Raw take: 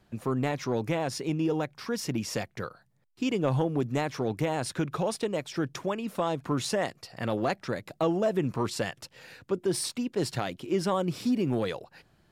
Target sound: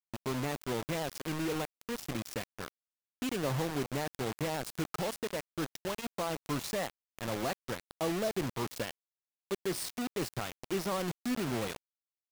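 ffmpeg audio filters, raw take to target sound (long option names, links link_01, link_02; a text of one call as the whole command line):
ffmpeg -i in.wav -af "acrusher=bits=4:mix=0:aa=0.000001,volume=-7dB" out.wav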